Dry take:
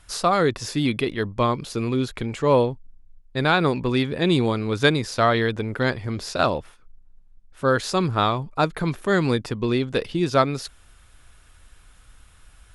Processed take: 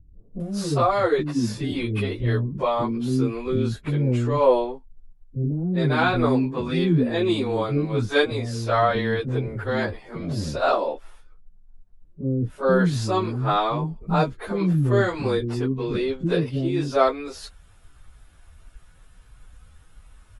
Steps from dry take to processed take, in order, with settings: tilt shelf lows +4.5 dB; plain phase-vocoder stretch 1.6×; bands offset in time lows, highs 400 ms, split 320 Hz; trim +1.5 dB

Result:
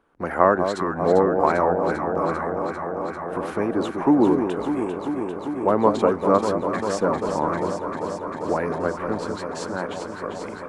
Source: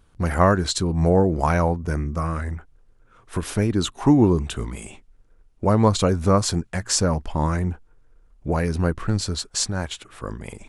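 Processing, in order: three-band isolator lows -23 dB, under 240 Hz, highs -18 dB, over 2.1 kHz; on a send: echo whose repeats swap between lows and highs 198 ms, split 1 kHz, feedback 90%, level -6.5 dB; on the sum: trim +2 dB

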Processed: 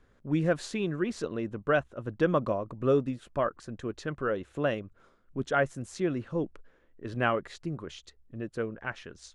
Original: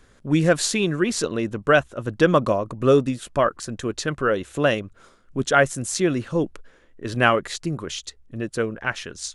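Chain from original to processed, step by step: low-pass 1.8 kHz 6 dB/octave; trim -8 dB

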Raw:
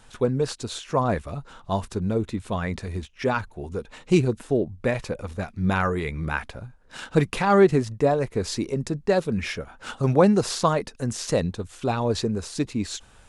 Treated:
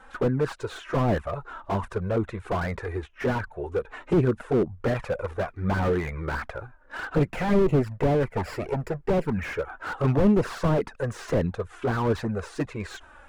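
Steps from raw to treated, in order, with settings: 7.23–9.32 s: comb filter that takes the minimum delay 0.4 ms; FFT filter 210 Hz 0 dB, 370 Hz +6 dB, 1.5 kHz +12 dB, 4.5 kHz -8 dB; touch-sensitive flanger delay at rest 3.9 ms, full sweep at -9.5 dBFS; slew-rate limiter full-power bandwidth 46 Hz

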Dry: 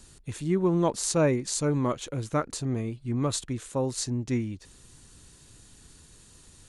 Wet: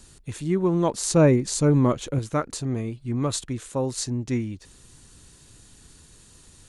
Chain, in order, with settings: 1.10–2.19 s: bass shelf 490 Hz +7 dB; trim +2 dB

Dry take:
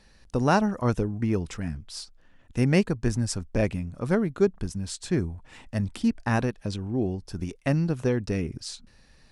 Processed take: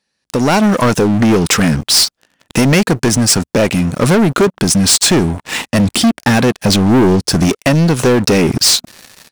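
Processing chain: compression 10:1, threshold -26 dBFS, peak gain reduction 11.5 dB; high-pass 160 Hz 12 dB/octave; treble shelf 2.1 kHz +7 dB; level rider gain up to 15 dB; 5.78–7.55 s: bass shelf 380 Hz +5 dB; waveshaping leveller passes 5; trim -4.5 dB

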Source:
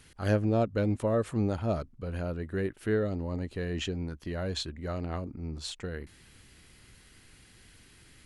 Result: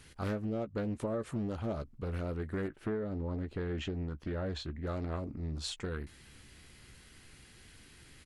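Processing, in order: doubling 14 ms -11 dB; compression 6:1, threshold -32 dBFS, peak gain reduction 11 dB; 2.68–4.87 s: low-pass 2.1 kHz 6 dB/octave; loudspeaker Doppler distortion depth 0.39 ms

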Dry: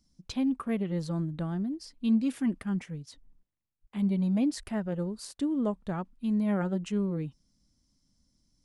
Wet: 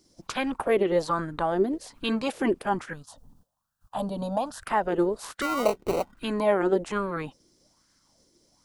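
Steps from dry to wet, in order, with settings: spectral peaks clipped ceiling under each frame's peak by 20 dB; in parallel at +2 dB: compression, threshold -40 dBFS, peak gain reduction 17.5 dB; 2.93–4.62 s: on the sum: static phaser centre 900 Hz, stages 4; 5.41–6.17 s: sample-rate reducer 1.7 kHz, jitter 0%; sweeping bell 1.2 Hz 360–1600 Hz +16 dB; trim -3.5 dB

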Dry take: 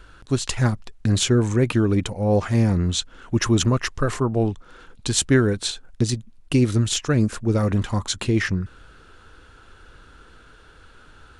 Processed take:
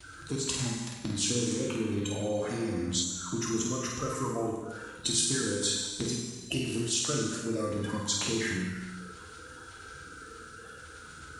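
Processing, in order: coarse spectral quantiser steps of 30 dB; compression 6:1, threshold -31 dBFS, peak gain reduction 17 dB; treble shelf 5.1 kHz +9 dB; gate with hold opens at -41 dBFS; high-pass 60 Hz; bass shelf 130 Hz -5.5 dB; on a send: flutter echo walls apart 8.5 m, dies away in 0.48 s; on the sum: gated-style reverb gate 480 ms falling, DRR -1 dB; time-frequency box 3.04–4.73 s, 1.5–5.7 kHz -6 dB; trim -1.5 dB

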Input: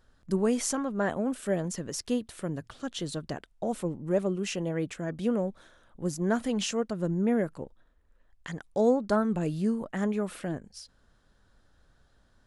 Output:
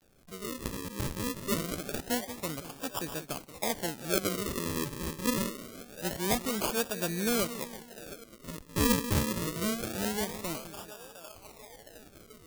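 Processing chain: fade-in on the opening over 1.58 s; bass shelf 250 Hz -10.5 dB; band-stop 4.5 kHz, Q 5.7; two-band feedback delay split 520 Hz, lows 180 ms, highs 710 ms, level -12 dB; decimation with a swept rate 41×, swing 100% 0.25 Hz; upward compressor, threshold -45 dBFS; bit crusher 11-bit; treble shelf 4.9 kHz +12 dB

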